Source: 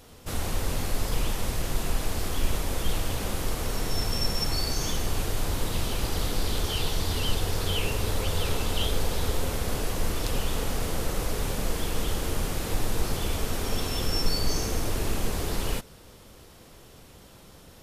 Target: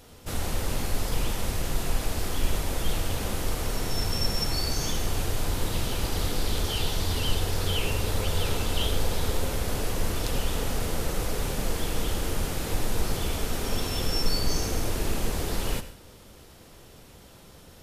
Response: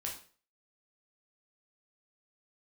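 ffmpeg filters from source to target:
-filter_complex "[0:a]bandreject=f=1100:w=27,asplit=2[s0][s1];[1:a]atrim=start_sample=2205,adelay=81[s2];[s1][s2]afir=irnorm=-1:irlink=0,volume=0.237[s3];[s0][s3]amix=inputs=2:normalize=0"

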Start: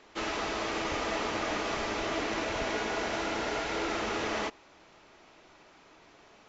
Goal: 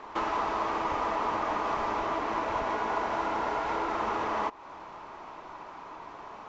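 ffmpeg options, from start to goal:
-af "highshelf=f=2700:g=-10.5,acompressor=threshold=0.00708:ratio=4,equalizer=f=1000:w=1.9:g=14,volume=2.51"

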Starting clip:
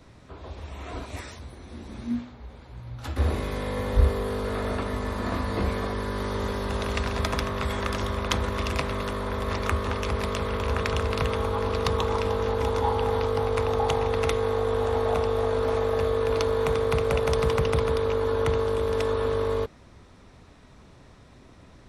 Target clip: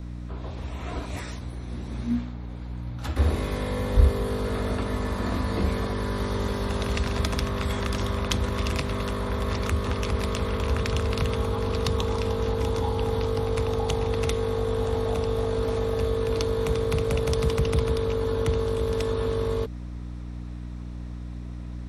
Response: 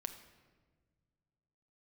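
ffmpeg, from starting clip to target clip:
-filter_complex "[0:a]aeval=exprs='val(0)+0.0158*(sin(2*PI*60*n/s)+sin(2*PI*2*60*n/s)/2+sin(2*PI*3*60*n/s)/3+sin(2*PI*4*60*n/s)/4+sin(2*PI*5*60*n/s)/5)':c=same,acrossover=split=400|3000[s0][s1][s2];[s1]acompressor=threshold=0.02:ratio=6[s3];[s0][s3][s2]amix=inputs=3:normalize=0,volume=1.26"

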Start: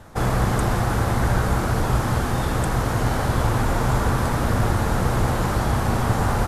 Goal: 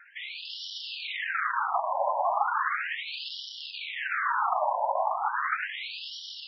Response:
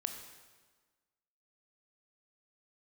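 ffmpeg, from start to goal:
-filter_complex "[0:a]aphaser=in_gain=1:out_gain=1:delay=4.8:decay=0.43:speed=0.57:type=triangular,dynaudnorm=f=140:g=11:m=6.31,highshelf=f=3900:g=11.5,volume=8.91,asoftclip=hard,volume=0.112,acontrast=69,asplit=2[s0][s1];[1:a]atrim=start_sample=2205,asetrate=66150,aresample=44100[s2];[s1][s2]afir=irnorm=-1:irlink=0,volume=1.26[s3];[s0][s3]amix=inputs=2:normalize=0,flanger=delay=2.8:depth=5.7:regen=-18:speed=1.6:shape=sinusoidal,aemphasis=mode=reproduction:type=75kf,afftfilt=real='re*between(b*sr/1024,750*pow(4100/750,0.5+0.5*sin(2*PI*0.36*pts/sr))/1.41,750*pow(4100/750,0.5+0.5*sin(2*PI*0.36*pts/sr))*1.41)':imag='im*between(b*sr/1024,750*pow(4100/750,0.5+0.5*sin(2*PI*0.36*pts/sr))/1.41,750*pow(4100/750,0.5+0.5*sin(2*PI*0.36*pts/sr))*1.41)':win_size=1024:overlap=0.75,volume=0.631"

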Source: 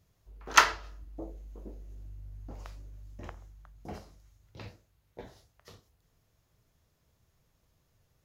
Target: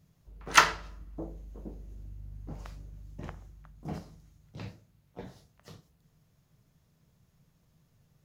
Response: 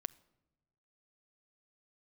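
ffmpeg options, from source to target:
-filter_complex "[0:a]equalizer=f=160:t=o:w=0.75:g=11.5,asplit=2[s0][s1];[s1]asetrate=66075,aresample=44100,atempo=0.66742,volume=0.224[s2];[s0][s2]amix=inputs=2:normalize=0,asplit=2[s3][s4];[1:a]atrim=start_sample=2205[s5];[s4][s5]afir=irnorm=-1:irlink=0,volume=2.37[s6];[s3][s6]amix=inputs=2:normalize=0,volume=0.355"

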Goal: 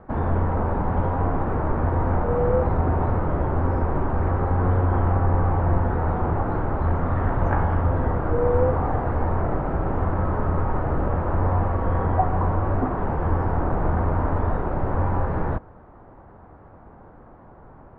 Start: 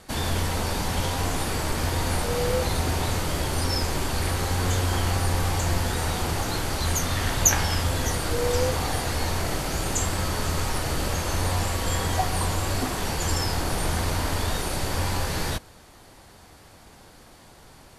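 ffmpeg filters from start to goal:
-af "lowpass=f=1300:w=0.5412,lowpass=f=1300:w=1.3066,volume=1.68"

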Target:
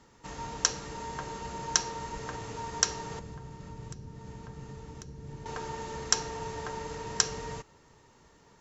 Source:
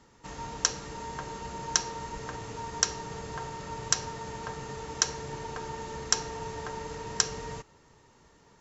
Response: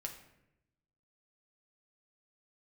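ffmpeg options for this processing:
-filter_complex "[0:a]asettb=1/sr,asplit=3[s0][s1][s2];[s0]atrim=end=3.194[s3];[s1]atrim=start=3.19:end=5.46,asetpts=PTS-STARTPTS,afade=t=in:d=0.004:c=qsin,afade=t=out:st=2.266:d=0.004:c=qsin,acrossover=split=290[s4][s5];[s5]acompressor=threshold=0.00282:ratio=6[s6];[s4][s6]amix=inputs=2:normalize=0[s7];[s2]atrim=start=5.456[s8];[s3][s7]acrossfade=d=0.004:c1=hsin:c2=qsin[s9];[s9][s8]acrossfade=d=0.004:c1=qsin:c2=hsin"

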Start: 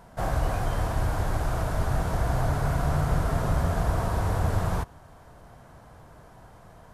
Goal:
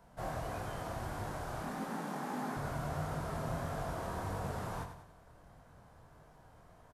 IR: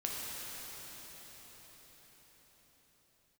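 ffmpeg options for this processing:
-filter_complex "[0:a]acrossover=split=120|1200|3200[s0][s1][s2][s3];[s0]acompressor=threshold=0.0141:ratio=6[s4];[s4][s1][s2][s3]amix=inputs=4:normalize=0,flanger=delay=19.5:depth=6.7:speed=1.6,asettb=1/sr,asplit=3[s5][s6][s7];[s5]atrim=end=1.634[s8];[s6]atrim=start=1.63:end=2.57,asetpts=PTS-STARTPTS,afade=t=in:d=0.004:c=qsin,afade=t=out:st=0.936:d=0.004:c=qsin,afreqshift=120[s9];[s7]atrim=start=2.566[s10];[s8][s9]acrossfade=d=0.004:c1=hsin:c2=qsin[s11];[s11][s10]acrossfade=d=0.004:c1=qsin:c2=hsin,aecho=1:1:96|192|288|384|480:0.355|0.156|0.0687|0.0302|0.0133,volume=0.447"

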